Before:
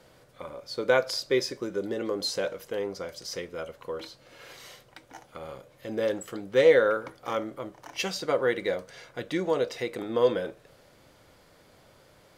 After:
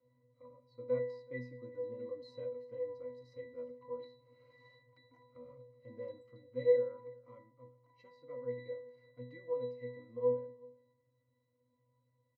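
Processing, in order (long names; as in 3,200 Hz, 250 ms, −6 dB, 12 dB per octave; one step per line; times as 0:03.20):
resonances in every octave B, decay 0.53 s
speech leveller within 5 dB 2 s
single-tap delay 377 ms −23 dB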